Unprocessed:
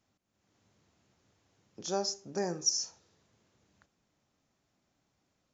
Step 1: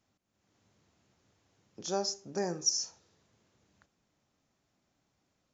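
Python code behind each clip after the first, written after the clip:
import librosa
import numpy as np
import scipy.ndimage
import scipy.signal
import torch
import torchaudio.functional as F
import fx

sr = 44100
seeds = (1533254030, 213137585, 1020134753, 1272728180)

y = x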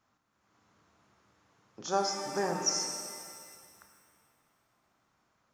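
y = fx.peak_eq(x, sr, hz=1200.0, db=12.5, octaves=1.2)
y = fx.rev_shimmer(y, sr, seeds[0], rt60_s=2.0, semitones=7, shimmer_db=-8, drr_db=3.5)
y = y * librosa.db_to_amplitude(-2.0)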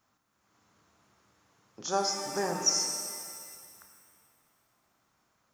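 y = fx.high_shelf(x, sr, hz=6800.0, db=9.5)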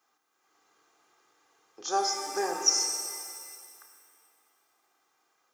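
y = scipy.signal.sosfilt(scipy.signal.butter(2, 360.0, 'highpass', fs=sr, output='sos'), x)
y = y + 0.58 * np.pad(y, (int(2.5 * sr / 1000.0), 0))[:len(y)]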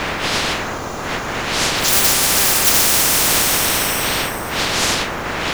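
y = fx.block_float(x, sr, bits=5)
y = fx.dmg_wind(y, sr, seeds[1], corner_hz=500.0, level_db=-30.0)
y = fx.spectral_comp(y, sr, ratio=10.0)
y = y * librosa.db_to_amplitude(8.5)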